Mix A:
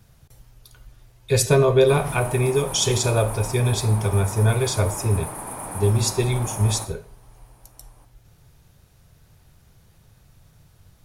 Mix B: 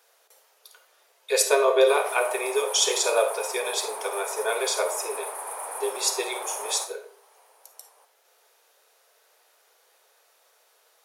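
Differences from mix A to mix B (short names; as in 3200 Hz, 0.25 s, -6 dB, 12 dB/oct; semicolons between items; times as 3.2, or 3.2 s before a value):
speech: send +11.0 dB; master: add elliptic high-pass 450 Hz, stop band 70 dB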